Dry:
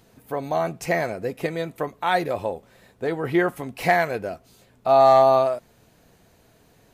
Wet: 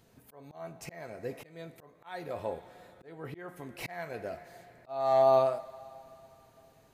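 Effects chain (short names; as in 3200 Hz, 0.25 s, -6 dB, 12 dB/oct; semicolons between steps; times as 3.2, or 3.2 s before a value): two-slope reverb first 0.31 s, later 3.5 s, from -18 dB, DRR 10.5 dB; auto swell 0.508 s; gain -7.5 dB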